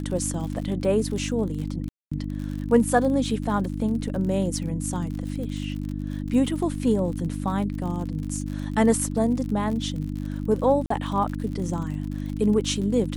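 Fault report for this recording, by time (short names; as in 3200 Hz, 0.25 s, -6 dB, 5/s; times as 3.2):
crackle 58/s -32 dBFS
hum 50 Hz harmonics 6 -30 dBFS
1.89–2.12 gap 0.225 s
10.86–10.9 gap 44 ms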